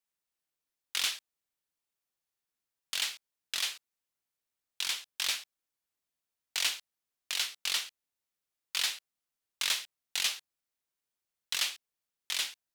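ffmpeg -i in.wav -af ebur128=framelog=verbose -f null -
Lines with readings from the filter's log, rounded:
Integrated loudness:
  I:         -32.6 LUFS
  Threshold: -43.1 LUFS
Loudness range:
  LRA:         3.8 LU
  Threshold: -55.4 LUFS
  LRA low:   -37.6 LUFS
  LRA high:  -33.8 LUFS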